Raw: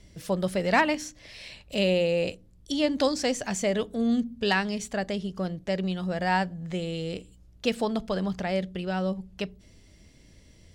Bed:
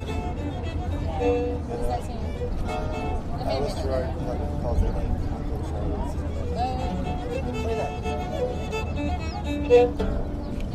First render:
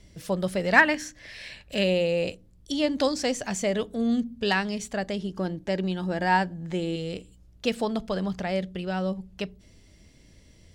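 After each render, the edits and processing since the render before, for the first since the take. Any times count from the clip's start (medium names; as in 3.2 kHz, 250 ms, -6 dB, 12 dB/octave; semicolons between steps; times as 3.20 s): 0.76–1.84 s: peaking EQ 1.7 kHz +11.5 dB 0.44 oct; 5.19–6.96 s: small resonant body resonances 320/880/1600 Hz, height 9 dB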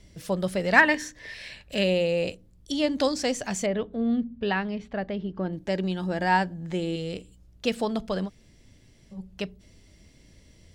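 0.83–1.34 s: small resonant body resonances 440/960/1800/3700 Hz, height 10 dB; 3.66–5.53 s: distance through air 350 m; 8.27–9.14 s: room tone, crossfade 0.06 s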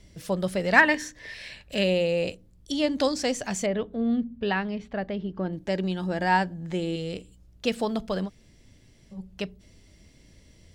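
7.72–8.21 s: short-mantissa float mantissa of 6-bit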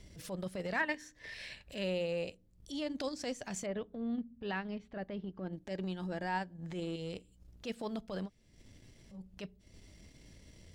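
transient shaper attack -11 dB, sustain -7 dB; compression 1.5:1, threshold -51 dBFS, peak gain reduction 12.5 dB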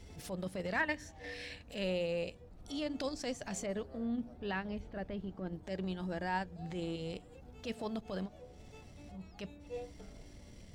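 add bed -27 dB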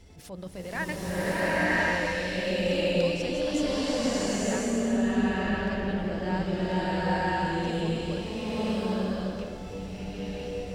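swelling reverb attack 1050 ms, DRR -11.5 dB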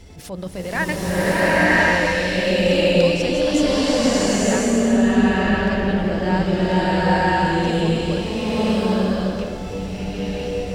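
trim +9.5 dB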